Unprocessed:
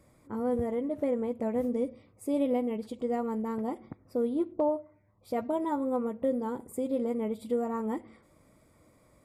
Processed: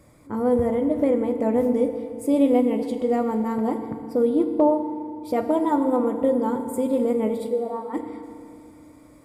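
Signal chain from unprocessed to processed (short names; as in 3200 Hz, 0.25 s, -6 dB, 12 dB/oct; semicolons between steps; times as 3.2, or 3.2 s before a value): 7.48–7.93 band-pass 360 Hz -> 1300 Hz, Q 3.3; FDN reverb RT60 2.4 s, low-frequency decay 1.25×, high-frequency decay 0.9×, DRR 7.5 dB; gain +7.5 dB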